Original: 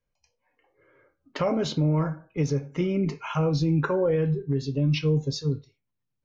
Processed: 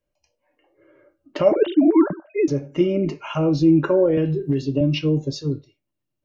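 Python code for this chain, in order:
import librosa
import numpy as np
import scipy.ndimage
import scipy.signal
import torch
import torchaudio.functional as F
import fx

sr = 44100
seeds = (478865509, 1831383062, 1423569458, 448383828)

y = fx.sine_speech(x, sr, at=(1.52, 2.48))
y = fx.small_body(y, sr, hz=(330.0, 590.0, 2800.0), ring_ms=50, db=14)
y = fx.band_squash(y, sr, depth_pct=100, at=(4.17, 4.81))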